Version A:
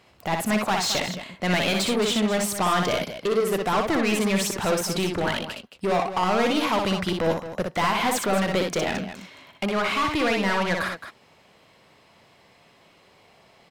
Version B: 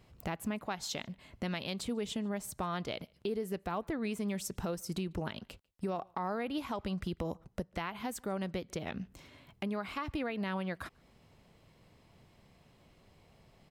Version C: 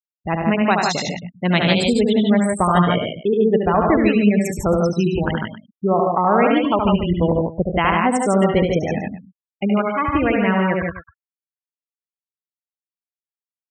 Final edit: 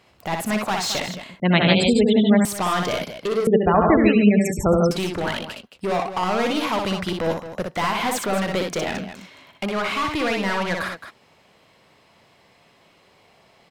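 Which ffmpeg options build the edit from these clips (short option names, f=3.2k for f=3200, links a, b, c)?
-filter_complex "[2:a]asplit=2[a][b];[0:a]asplit=3[c][d][e];[c]atrim=end=1.402[f];[a]atrim=start=1.398:end=2.452[g];[d]atrim=start=2.448:end=3.472[h];[b]atrim=start=3.468:end=4.912[i];[e]atrim=start=4.908[j];[f][g]acrossfade=d=0.004:c1=hsin:c2=hsin[k];[k][h]acrossfade=d=0.004:c1=hsin:c2=hsin[l];[l][i]acrossfade=d=0.004:c1=hsin:c2=hsin[m];[m][j]acrossfade=d=0.004:c1=hsin:c2=hsin"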